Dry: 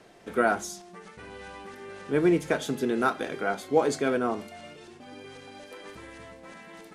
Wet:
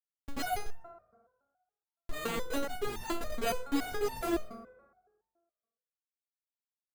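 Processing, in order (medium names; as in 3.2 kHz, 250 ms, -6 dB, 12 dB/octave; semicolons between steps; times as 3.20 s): flange 1.7 Hz, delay 0.6 ms, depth 3.8 ms, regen +9%; in parallel at -7.5 dB: saturation -28 dBFS, distortion -8 dB; on the sum: careless resampling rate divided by 8×, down none, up zero stuff; Schmitt trigger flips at -12 dBFS; on a send at -6 dB: reverberation RT60 1.4 s, pre-delay 3 ms; on the sum: resonator arpeggio 7.1 Hz 230–900 Hz; trim +5.5 dB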